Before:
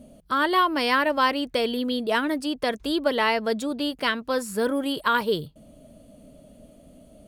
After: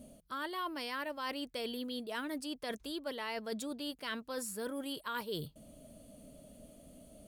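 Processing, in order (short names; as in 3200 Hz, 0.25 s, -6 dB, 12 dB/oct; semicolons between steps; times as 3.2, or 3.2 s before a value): high shelf 4700 Hz +9 dB; reverse; compressor 6:1, threshold -31 dBFS, peak gain reduction 14.5 dB; reverse; gain -6 dB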